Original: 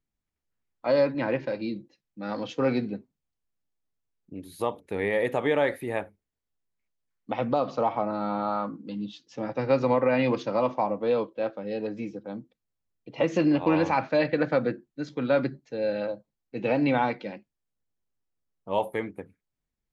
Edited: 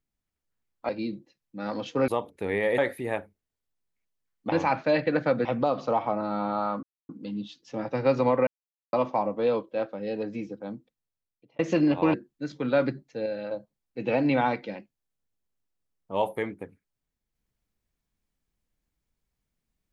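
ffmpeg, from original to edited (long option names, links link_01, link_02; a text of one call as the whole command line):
ffmpeg -i in.wav -filter_complex "[0:a]asplit=13[link_01][link_02][link_03][link_04][link_05][link_06][link_07][link_08][link_09][link_10][link_11][link_12][link_13];[link_01]atrim=end=0.892[link_14];[link_02]atrim=start=1.518:end=2.712[link_15];[link_03]atrim=start=4.578:end=5.282[link_16];[link_04]atrim=start=5.608:end=7.352[link_17];[link_05]atrim=start=13.778:end=14.712[link_18];[link_06]atrim=start=7.348:end=8.73,asetpts=PTS-STARTPTS,afade=type=out:start_time=1.378:duration=0.004:curve=hsin,apad=pad_dur=0.26[link_19];[link_07]atrim=start=8.73:end=10.11,asetpts=PTS-STARTPTS,afade=type=in:duration=0.004:curve=hsin,afade=type=out:start_time=1.376:duration=0.004:curve=hsin[link_20];[link_08]atrim=start=10.11:end=10.57,asetpts=PTS-STARTPTS,volume=0[link_21];[link_09]atrim=start=10.57:end=13.23,asetpts=PTS-STARTPTS,afade=type=in:duration=0.004:curve=hsin,afade=type=out:start_time=1.77:duration=0.89[link_22];[link_10]atrim=start=13.23:end=13.782,asetpts=PTS-STARTPTS,afade=type=in:duration=0.004:curve=hsin[link_23];[link_11]atrim=start=14.708:end=15.832[link_24];[link_12]atrim=start=15.828:end=16.082,asetpts=PTS-STARTPTS,volume=-5dB[link_25];[link_13]atrim=start=16.078[link_26];[link_14][link_15]acrossfade=duration=0.004:curve1=hsin:curve2=hsin[link_27];[link_27][link_16]acrossfade=duration=0.004:curve1=hsin:curve2=hsin[link_28];[link_28][link_17]acrossfade=duration=0.004:curve1=hsin:curve2=hsin[link_29];[link_29][link_18]acrossfade=duration=0.004:curve1=hsin:curve2=hsin[link_30];[link_19][link_20][link_21][link_22][link_23]concat=n=5:v=0:a=1[link_31];[link_30][link_31]acrossfade=duration=0.004:curve1=hsin:curve2=hsin[link_32];[link_32][link_24]acrossfade=duration=0.004:curve1=hsin:curve2=hsin[link_33];[link_33][link_25]acrossfade=duration=0.004:curve1=hsin:curve2=hsin[link_34];[link_34][link_26]acrossfade=duration=0.004:curve1=hsin:curve2=hsin" out.wav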